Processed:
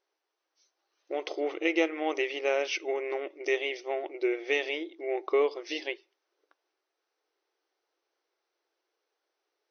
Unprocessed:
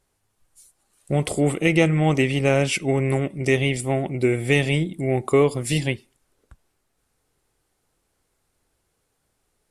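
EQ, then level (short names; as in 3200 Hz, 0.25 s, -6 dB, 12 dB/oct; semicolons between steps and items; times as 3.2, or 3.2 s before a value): brick-wall FIR band-pass 300–6300 Hz; -7.0 dB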